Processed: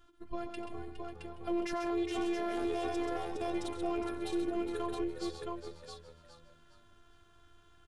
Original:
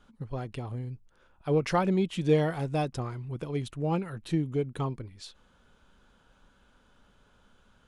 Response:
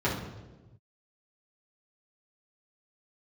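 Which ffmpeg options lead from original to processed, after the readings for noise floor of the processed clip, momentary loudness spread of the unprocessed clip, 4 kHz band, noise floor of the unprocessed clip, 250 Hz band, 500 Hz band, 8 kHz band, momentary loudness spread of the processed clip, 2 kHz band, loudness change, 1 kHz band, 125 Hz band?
-63 dBFS, 16 LU, -3.0 dB, -64 dBFS, -4.0 dB, -5.5 dB, -2.5 dB, 12 LU, -4.0 dB, -6.5 dB, -4.0 dB, -21.0 dB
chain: -filter_complex "[0:a]asplit=2[s0][s1];[s1]aecho=0:1:90|131|668:0.2|0.376|0.596[s2];[s0][s2]amix=inputs=2:normalize=0,afftfilt=real='hypot(re,im)*cos(PI*b)':imag='0':win_size=512:overlap=0.75,asplit=2[s3][s4];[s4]asplit=3[s5][s6][s7];[s5]adelay=412,afreqshift=80,volume=0.282[s8];[s6]adelay=824,afreqshift=160,volume=0.0902[s9];[s7]adelay=1236,afreqshift=240,volume=0.0288[s10];[s8][s9][s10]amix=inputs=3:normalize=0[s11];[s3][s11]amix=inputs=2:normalize=0,alimiter=level_in=1.19:limit=0.0631:level=0:latency=1:release=18,volume=0.841,aeval=exprs='0.0562*(cos(1*acos(clip(val(0)/0.0562,-1,1)))-cos(1*PI/2))+0.00562*(cos(2*acos(clip(val(0)/0.0562,-1,1)))-cos(2*PI/2))+0.00112*(cos(5*acos(clip(val(0)/0.0562,-1,1)))-cos(5*PI/2))':c=same"

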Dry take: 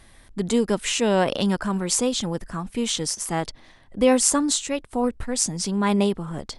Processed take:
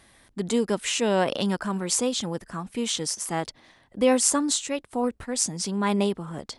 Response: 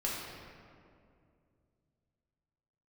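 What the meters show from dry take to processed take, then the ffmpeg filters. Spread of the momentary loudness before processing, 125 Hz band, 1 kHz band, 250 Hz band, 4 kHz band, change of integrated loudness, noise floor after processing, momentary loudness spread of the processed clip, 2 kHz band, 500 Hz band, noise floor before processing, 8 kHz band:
12 LU, -4.0 dB, -2.0 dB, -3.5 dB, -2.0 dB, -2.5 dB, -60 dBFS, 13 LU, -2.0 dB, -2.5 dB, -52 dBFS, -2.0 dB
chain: -af "highpass=f=140:p=1,volume=0.794"

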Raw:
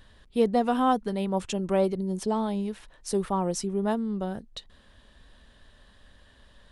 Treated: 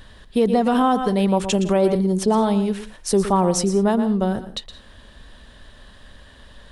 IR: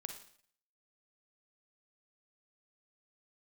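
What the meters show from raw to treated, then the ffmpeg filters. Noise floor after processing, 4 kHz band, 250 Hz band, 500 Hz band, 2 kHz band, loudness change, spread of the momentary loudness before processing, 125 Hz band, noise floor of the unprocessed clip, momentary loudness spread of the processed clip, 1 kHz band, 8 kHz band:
-47 dBFS, +9.5 dB, +8.5 dB, +7.5 dB, +7.5 dB, +8.0 dB, 11 LU, +9.5 dB, -57 dBFS, 8 LU, +6.5 dB, +10.0 dB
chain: -filter_complex "[0:a]asplit=2[s0][s1];[1:a]atrim=start_sample=2205,atrim=end_sample=4410,adelay=117[s2];[s1][s2]afir=irnorm=-1:irlink=0,volume=0.376[s3];[s0][s3]amix=inputs=2:normalize=0,alimiter=level_in=7.5:limit=0.891:release=50:level=0:latency=1,volume=0.422"

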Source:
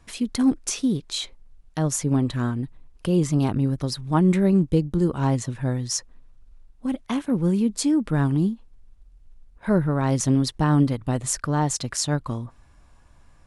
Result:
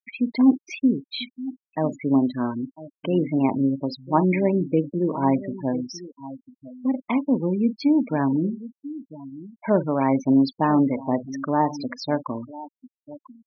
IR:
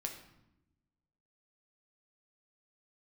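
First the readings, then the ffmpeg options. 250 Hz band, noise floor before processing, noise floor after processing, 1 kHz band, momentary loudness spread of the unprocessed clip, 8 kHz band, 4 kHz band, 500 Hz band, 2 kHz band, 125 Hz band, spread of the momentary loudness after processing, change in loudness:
+1.5 dB, -54 dBFS, under -85 dBFS, +4.5 dB, 10 LU, under -20 dB, -5.5 dB, +2.5 dB, +0.5 dB, -7.0 dB, 17 LU, 0.0 dB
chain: -filter_complex "[0:a]asplit=2[s0][s1];[s1]adelay=44,volume=0.237[s2];[s0][s2]amix=inputs=2:normalize=0,aecho=1:1:997:0.168,acompressor=mode=upward:threshold=0.02:ratio=2.5,highpass=230,equalizer=f=260:t=q:w=4:g=6,equalizer=f=620:t=q:w=4:g=6,equalizer=f=930:t=q:w=4:g=6,equalizer=f=1400:t=q:w=4:g=-4,equalizer=f=2300:t=q:w=4:g=10,equalizer=f=3800:t=q:w=4:g=-3,lowpass=f=4700:w=0.5412,lowpass=f=4700:w=1.3066,afftfilt=real='re*gte(hypot(re,im),0.0501)':imag='im*gte(hypot(re,im),0.0501)':win_size=1024:overlap=0.75"

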